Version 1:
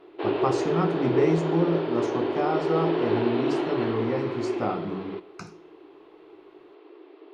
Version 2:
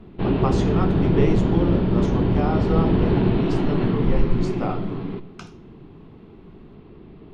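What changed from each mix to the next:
speech: remove Butterworth band-reject 3,200 Hz, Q 2.3
background: remove linear-phase brick-wall high-pass 290 Hz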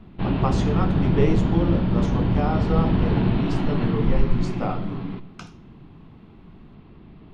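background: add parametric band 410 Hz −9 dB 0.78 octaves

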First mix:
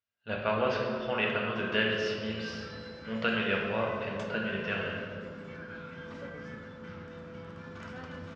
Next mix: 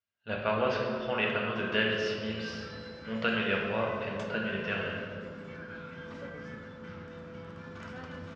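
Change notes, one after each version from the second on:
nothing changed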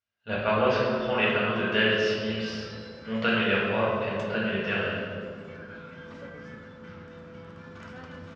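speech: send +6.5 dB

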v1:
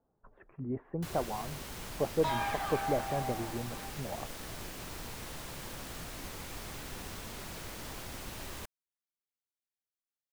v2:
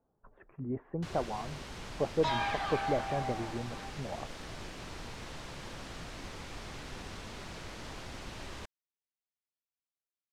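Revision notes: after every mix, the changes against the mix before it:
second sound: add high-shelf EQ 3,800 Hz +11.5 dB
master: add low-pass filter 5,800 Hz 12 dB per octave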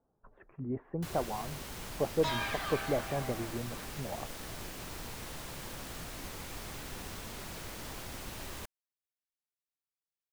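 second sound: add parametric band 820 Hz −13.5 dB 0.24 octaves
master: remove low-pass filter 5,800 Hz 12 dB per octave

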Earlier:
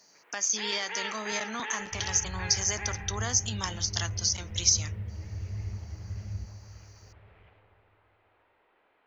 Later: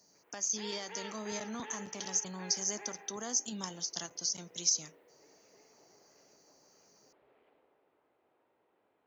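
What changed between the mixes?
second sound: muted
master: add parametric band 2,100 Hz −13.5 dB 2.8 octaves

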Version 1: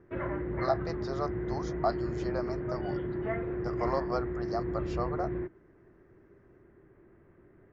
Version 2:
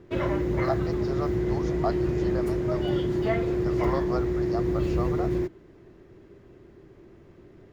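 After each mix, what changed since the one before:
background: remove transistor ladder low-pass 2,100 Hz, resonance 40%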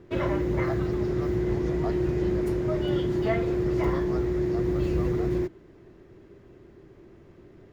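speech −8.0 dB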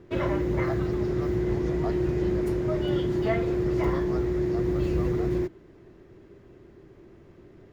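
nothing changed

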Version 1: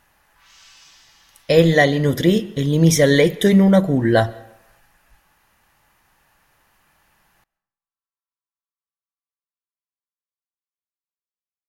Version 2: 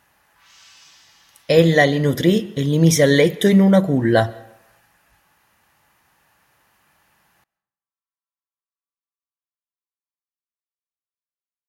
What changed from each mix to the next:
speech: add high-pass filter 74 Hz 12 dB per octave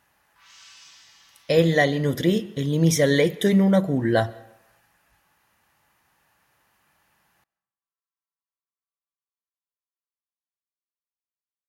speech −5.0 dB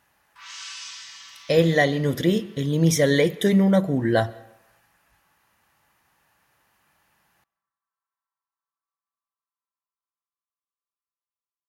background +11.5 dB

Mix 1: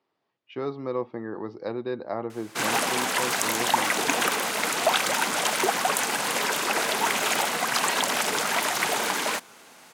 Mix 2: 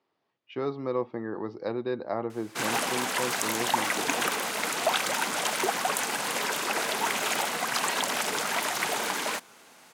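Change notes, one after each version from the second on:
background −3.5 dB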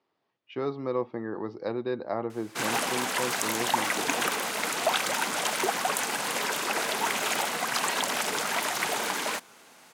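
nothing changed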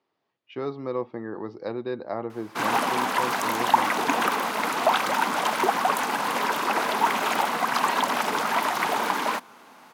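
background: add octave-band graphic EQ 250/1,000/8,000 Hz +7/+9/−7 dB

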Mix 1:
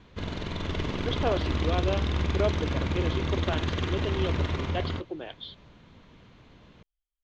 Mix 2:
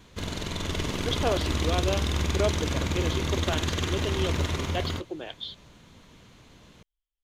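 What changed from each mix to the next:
master: remove high-frequency loss of the air 190 metres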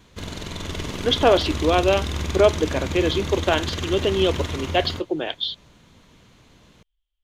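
speech +11.0 dB

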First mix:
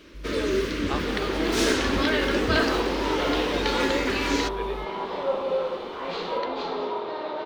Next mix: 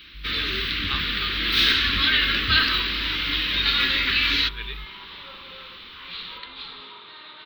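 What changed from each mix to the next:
second sound −8.5 dB
master: add drawn EQ curve 140 Hz 0 dB, 490 Hz −17 dB, 700 Hz −19 dB, 1,200 Hz +1 dB, 3,900 Hz +14 dB, 7,100 Hz −18 dB, 11,000 Hz −7 dB, 15,000 Hz +9 dB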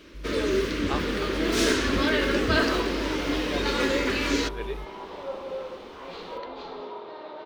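master: remove drawn EQ curve 140 Hz 0 dB, 490 Hz −17 dB, 700 Hz −19 dB, 1,200 Hz +1 dB, 3,900 Hz +14 dB, 7,100 Hz −18 dB, 11,000 Hz −7 dB, 15,000 Hz +9 dB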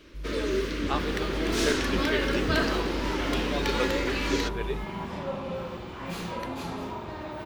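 first sound −4.0 dB
second sound: remove loudspeaker in its box 420–4,300 Hz, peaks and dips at 450 Hz +10 dB, 1,700 Hz −5 dB, 2,500 Hz −6 dB, 4,100 Hz +4 dB
reverb: on, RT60 0.65 s

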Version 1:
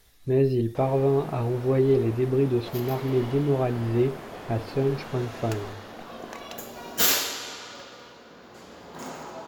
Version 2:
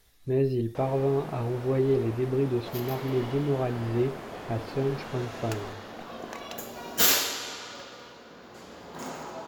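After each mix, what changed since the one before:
speech −3.5 dB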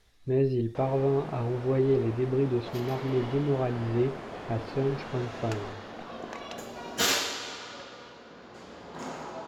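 master: add high-frequency loss of the air 57 metres

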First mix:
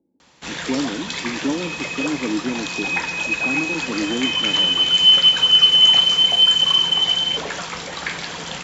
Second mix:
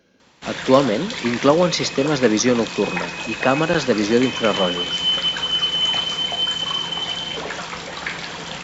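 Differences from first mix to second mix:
speech: remove formant resonators in series u
second sound −7.5 dB
master: add parametric band 7,500 Hz −4 dB 1.2 octaves

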